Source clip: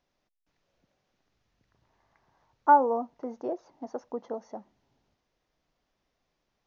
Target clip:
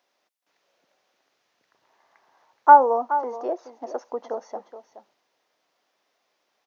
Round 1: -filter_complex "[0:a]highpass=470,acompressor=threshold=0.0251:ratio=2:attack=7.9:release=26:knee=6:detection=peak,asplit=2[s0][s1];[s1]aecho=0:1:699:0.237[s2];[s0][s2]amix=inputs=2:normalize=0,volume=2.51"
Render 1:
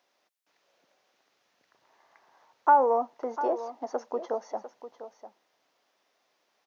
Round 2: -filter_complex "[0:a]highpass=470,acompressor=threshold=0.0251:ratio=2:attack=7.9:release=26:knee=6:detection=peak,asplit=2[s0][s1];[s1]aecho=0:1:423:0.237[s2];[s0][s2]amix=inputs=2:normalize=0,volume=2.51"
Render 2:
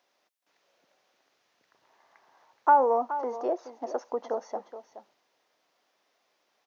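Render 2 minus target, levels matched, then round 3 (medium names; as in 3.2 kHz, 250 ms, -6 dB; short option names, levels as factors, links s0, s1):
compression: peak gain reduction +9 dB
-filter_complex "[0:a]highpass=470,asplit=2[s0][s1];[s1]aecho=0:1:423:0.237[s2];[s0][s2]amix=inputs=2:normalize=0,volume=2.51"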